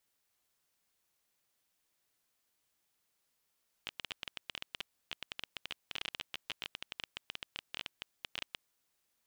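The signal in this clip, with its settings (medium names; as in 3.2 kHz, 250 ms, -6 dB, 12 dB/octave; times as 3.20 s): random clicks 15 per s -21.5 dBFS 4.76 s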